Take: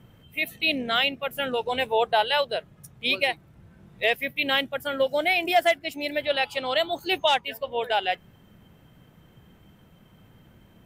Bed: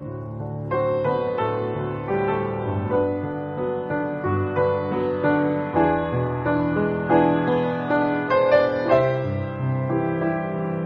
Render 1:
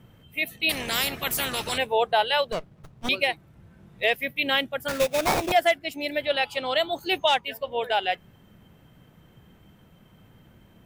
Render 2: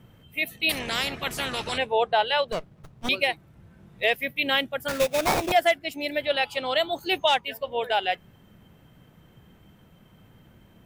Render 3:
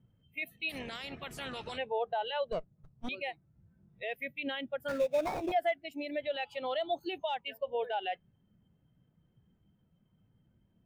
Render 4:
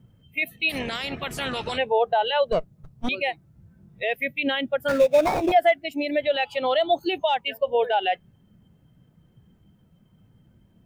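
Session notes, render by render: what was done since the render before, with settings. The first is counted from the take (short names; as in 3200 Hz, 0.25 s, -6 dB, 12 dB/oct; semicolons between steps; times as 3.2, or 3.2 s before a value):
0.69–1.78 spectral compressor 4:1; 2.52–3.09 running maximum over 17 samples; 4.88–5.52 sample-rate reducer 3100 Hz, jitter 20%
0.79–2.48 air absorption 59 m
limiter -21.5 dBFS, peak gain reduction 11 dB; spectral expander 1.5:1
gain +12 dB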